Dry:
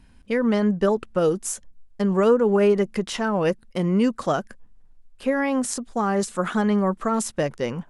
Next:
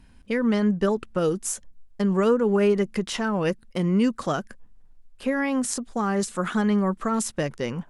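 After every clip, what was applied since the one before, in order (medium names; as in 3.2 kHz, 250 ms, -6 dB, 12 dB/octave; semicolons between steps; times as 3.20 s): dynamic bell 660 Hz, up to -5 dB, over -32 dBFS, Q 0.99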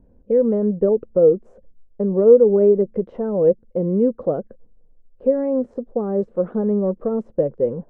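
resonant low-pass 510 Hz, resonance Q 4.9; trim -1 dB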